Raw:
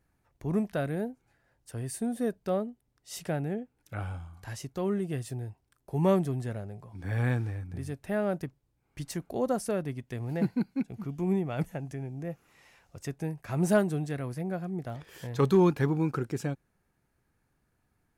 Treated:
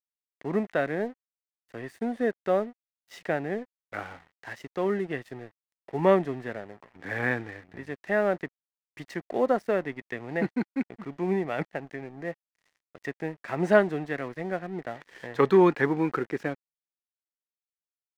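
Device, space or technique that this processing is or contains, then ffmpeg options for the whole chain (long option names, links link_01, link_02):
pocket radio on a weak battery: -af "highpass=290,lowpass=3100,aeval=exprs='sgn(val(0))*max(abs(val(0))-0.00178,0)':channel_layout=same,equalizer=frequency=1900:width_type=o:width=0.32:gain=9.5,volume=6dB"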